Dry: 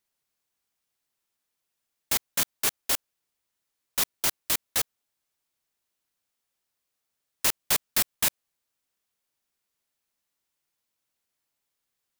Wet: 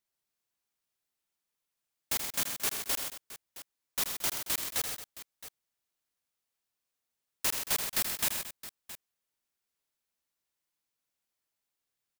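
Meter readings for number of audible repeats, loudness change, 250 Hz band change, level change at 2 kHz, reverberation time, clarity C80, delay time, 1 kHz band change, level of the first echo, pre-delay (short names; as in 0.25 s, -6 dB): 4, -5.0 dB, -4.5 dB, -4.5 dB, none, none, 80 ms, -4.5 dB, -7.5 dB, none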